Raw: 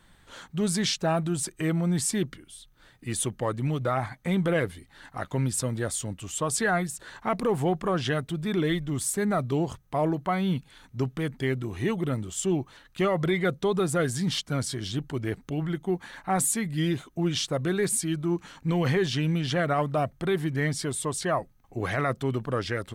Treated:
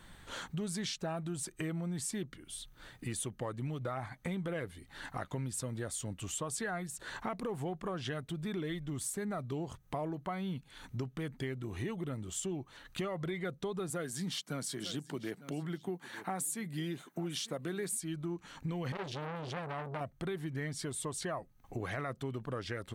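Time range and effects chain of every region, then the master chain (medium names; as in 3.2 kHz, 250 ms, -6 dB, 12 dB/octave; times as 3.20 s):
13.90–18.00 s: high-pass 150 Hz 24 dB/octave + treble shelf 11 kHz +8.5 dB + delay 899 ms -20.5 dB
18.92–20.01 s: bass shelf 340 Hz +5 dB + transformer saturation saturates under 1.3 kHz
whole clip: band-stop 5.1 kHz, Q 29; compression 4:1, threshold -41 dBFS; trim +3 dB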